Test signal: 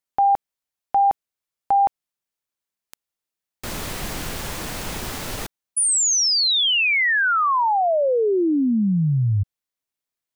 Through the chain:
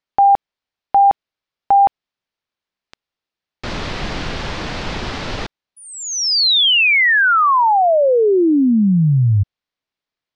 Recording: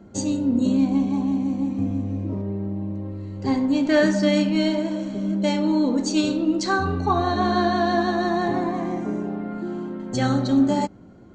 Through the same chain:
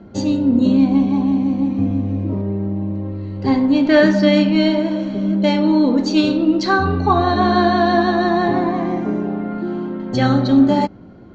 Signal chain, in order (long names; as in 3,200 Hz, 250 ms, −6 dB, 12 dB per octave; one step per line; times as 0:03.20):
low-pass filter 4,900 Hz 24 dB per octave
level +6 dB